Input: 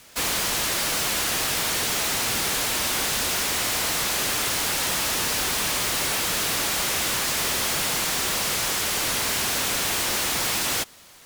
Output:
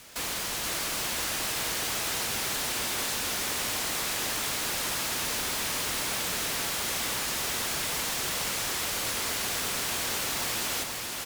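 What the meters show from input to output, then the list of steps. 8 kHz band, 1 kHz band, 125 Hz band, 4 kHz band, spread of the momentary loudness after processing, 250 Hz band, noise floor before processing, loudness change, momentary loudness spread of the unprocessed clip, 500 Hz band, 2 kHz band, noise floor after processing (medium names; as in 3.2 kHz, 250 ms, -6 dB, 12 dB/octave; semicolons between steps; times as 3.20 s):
-6.0 dB, -6.0 dB, -6.0 dB, -6.0 dB, 1 LU, -6.0 dB, -44 dBFS, -6.0 dB, 0 LU, -6.0 dB, -6.0 dB, -34 dBFS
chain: peak limiter -25 dBFS, peak gain reduction 9 dB; feedback delay 479 ms, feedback 55%, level -4.5 dB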